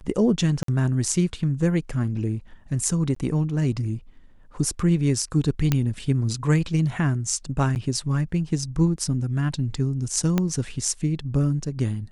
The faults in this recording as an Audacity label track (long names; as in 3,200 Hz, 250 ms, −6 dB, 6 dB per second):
0.630000	0.680000	drop-out 53 ms
3.150000	3.160000	drop-out 14 ms
5.720000	5.720000	click −7 dBFS
7.750000	7.760000	drop-out 9.4 ms
10.380000	10.380000	click −9 dBFS